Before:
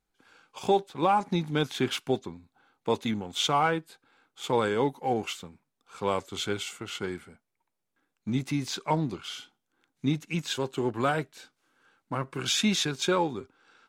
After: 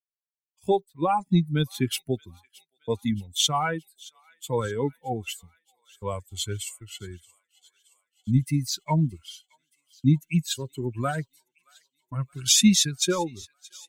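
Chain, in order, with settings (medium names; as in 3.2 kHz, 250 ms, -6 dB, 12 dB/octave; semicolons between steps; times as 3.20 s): expander on every frequency bin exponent 2; expander -53 dBFS; tone controls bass +13 dB, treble +15 dB; on a send: feedback echo behind a high-pass 623 ms, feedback 61%, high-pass 2 kHz, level -22 dB; on the sum: trim +1.5 dB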